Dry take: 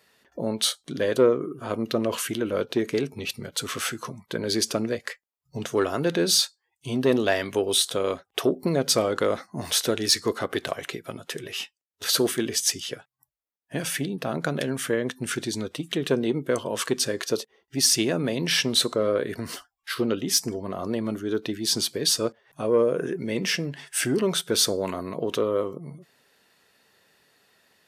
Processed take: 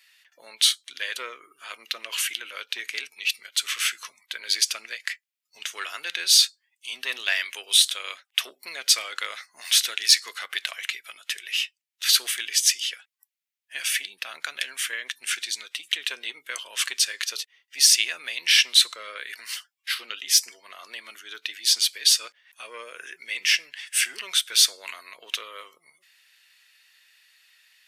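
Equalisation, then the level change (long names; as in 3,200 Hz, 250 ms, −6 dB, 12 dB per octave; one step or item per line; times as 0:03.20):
high-pass with resonance 2,300 Hz, resonance Q 1.8
+3.0 dB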